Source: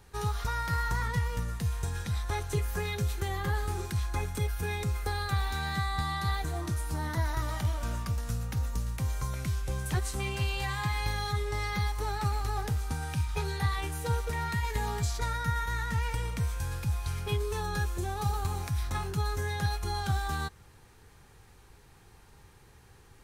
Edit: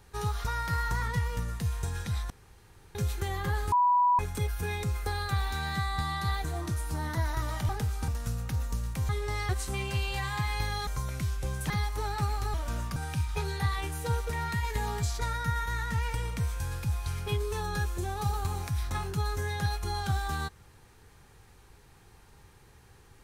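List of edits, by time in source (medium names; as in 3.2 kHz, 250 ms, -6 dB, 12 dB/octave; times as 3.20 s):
2.30–2.95 s: room tone
3.72–4.19 s: bleep 981 Hz -20 dBFS
7.69–8.11 s: swap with 12.57–12.96 s
9.12–9.95 s: swap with 11.33–11.73 s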